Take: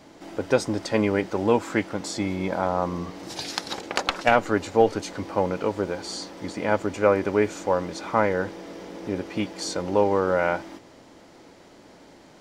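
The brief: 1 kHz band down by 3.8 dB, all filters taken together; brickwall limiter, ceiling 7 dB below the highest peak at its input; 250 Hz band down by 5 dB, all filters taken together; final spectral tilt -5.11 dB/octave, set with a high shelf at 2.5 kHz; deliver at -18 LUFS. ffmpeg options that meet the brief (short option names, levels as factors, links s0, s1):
-af "equalizer=f=250:t=o:g=-6.5,equalizer=f=1000:t=o:g=-4,highshelf=f=2500:g=-4.5,volume=4.22,alimiter=limit=0.75:level=0:latency=1"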